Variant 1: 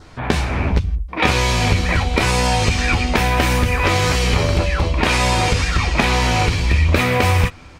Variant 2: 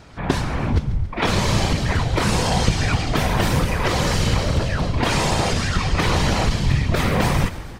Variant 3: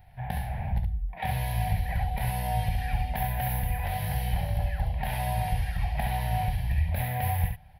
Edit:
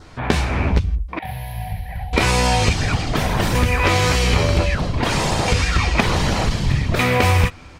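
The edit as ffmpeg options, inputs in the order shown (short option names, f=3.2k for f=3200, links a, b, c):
-filter_complex "[1:a]asplit=3[a][b][c];[0:a]asplit=5[d][e][f][g][h];[d]atrim=end=1.192[i];[2:a]atrim=start=1.188:end=2.132[j];[e]atrim=start=2.128:end=2.732[k];[a]atrim=start=2.728:end=3.552[l];[f]atrim=start=3.548:end=4.752[m];[b]atrim=start=4.748:end=5.482[n];[g]atrim=start=5.478:end=6.012[o];[c]atrim=start=6.008:end=6.992[p];[h]atrim=start=6.988[q];[i][j]acrossfade=d=0.004:c1=hsin:c2=hsin[r];[r][k]acrossfade=d=0.004:c1=hsin:c2=hsin[s];[s][l]acrossfade=d=0.004:c1=hsin:c2=hsin[t];[t][m]acrossfade=d=0.004:c1=hsin:c2=hsin[u];[u][n]acrossfade=d=0.004:c1=hsin:c2=hsin[v];[v][o]acrossfade=d=0.004:c1=hsin:c2=hsin[w];[w][p]acrossfade=d=0.004:c1=hsin:c2=hsin[x];[x][q]acrossfade=d=0.004:c1=hsin:c2=hsin"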